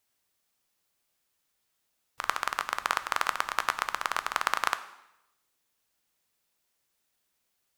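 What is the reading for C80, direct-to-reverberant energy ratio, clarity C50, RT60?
16.0 dB, 11.0 dB, 14.5 dB, 0.85 s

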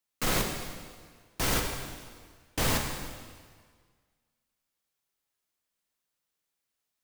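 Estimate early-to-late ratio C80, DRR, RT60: 6.0 dB, 1.5 dB, 1.7 s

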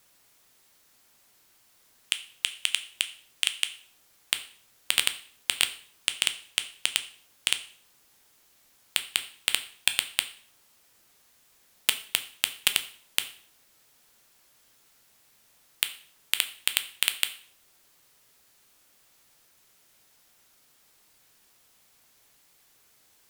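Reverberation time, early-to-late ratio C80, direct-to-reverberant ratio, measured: 0.50 s, 18.0 dB, 8.5 dB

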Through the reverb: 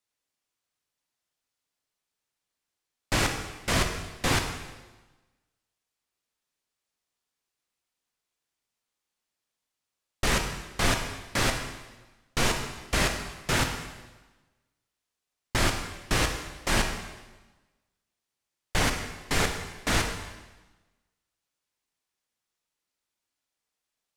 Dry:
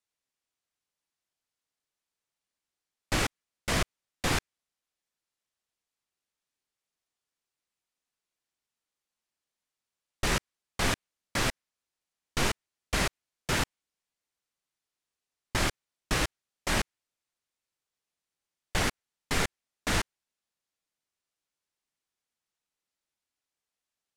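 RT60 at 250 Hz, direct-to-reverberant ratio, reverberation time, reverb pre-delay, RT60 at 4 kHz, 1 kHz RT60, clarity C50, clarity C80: 1.3 s, 4.0 dB, 1.2 s, 6 ms, 1.1 s, 1.2 s, 6.5 dB, 8.0 dB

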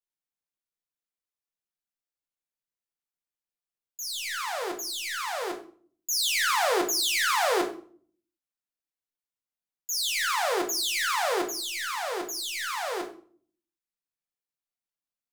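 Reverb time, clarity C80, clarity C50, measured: 0.50 s, 14.5 dB, 10.0 dB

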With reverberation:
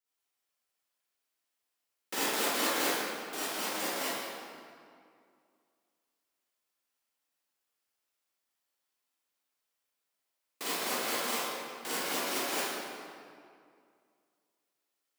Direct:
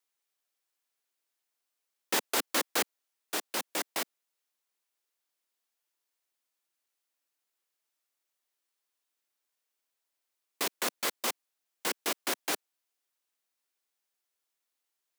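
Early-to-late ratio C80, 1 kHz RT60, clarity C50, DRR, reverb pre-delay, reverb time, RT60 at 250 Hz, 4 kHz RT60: −4.0 dB, 2.2 s, −8.0 dB, −11.0 dB, 39 ms, 2.2 s, 2.4 s, 1.5 s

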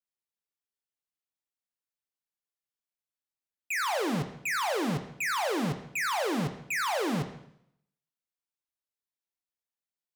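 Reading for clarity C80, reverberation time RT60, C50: 12.0 dB, 0.70 s, 9.5 dB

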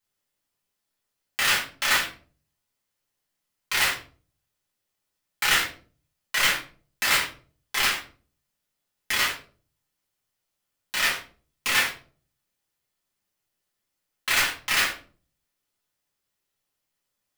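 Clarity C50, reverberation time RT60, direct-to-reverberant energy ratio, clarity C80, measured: 8.0 dB, 0.45 s, −6.5 dB, 13.5 dB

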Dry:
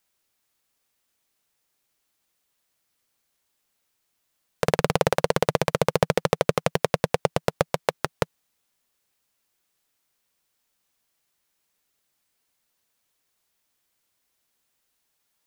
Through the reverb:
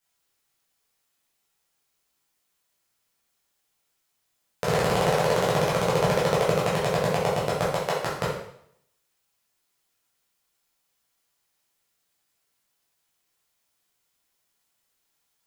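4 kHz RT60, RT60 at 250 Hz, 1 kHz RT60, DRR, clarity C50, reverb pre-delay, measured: 0.65 s, 0.70 s, 0.70 s, −7.5 dB, 2.0 dB, 5 ms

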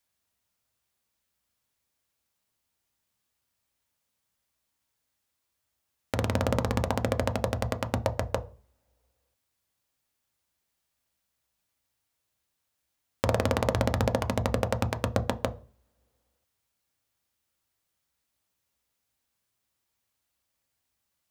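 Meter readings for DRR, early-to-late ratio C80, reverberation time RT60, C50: 8.0 dB, 24.5 dB, non-exponential decay, 20.5 dB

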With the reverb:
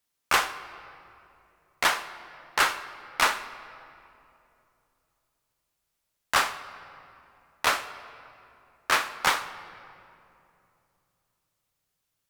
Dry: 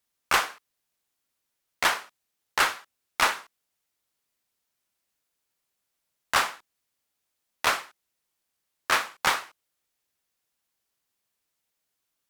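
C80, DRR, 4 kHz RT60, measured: 14.0 dB, 11.0 dB, 1.7 s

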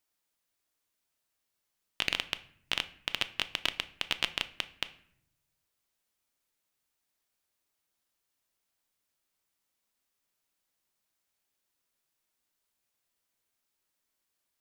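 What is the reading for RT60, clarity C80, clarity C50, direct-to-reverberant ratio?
0.65 s, 20.5 dB, 17.0 dB, 11.0 dB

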